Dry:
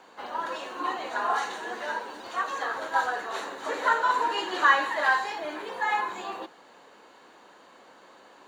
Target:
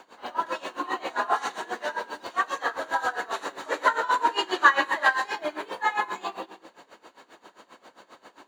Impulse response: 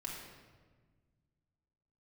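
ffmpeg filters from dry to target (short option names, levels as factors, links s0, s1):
-filter_complex "[0:a]asplit=2[s0][s1];[1:a]atrim=start_sample=2205,afade=t=out:st=0.36:d=0.01,atrim=end_sample=16317,highshelf=f=5500:g=8.5[s2];[s1][s2]afir=irnorm=-1:irlink=0,volume=0.501[s3];[s0][s3]amix=inputs=2:normalize=0,aeval=exprs='val(0)*pow(10,-19*(0.5-0.5*cos(2*PI*7.5*n/s))/20)':c=same,volume=1.58"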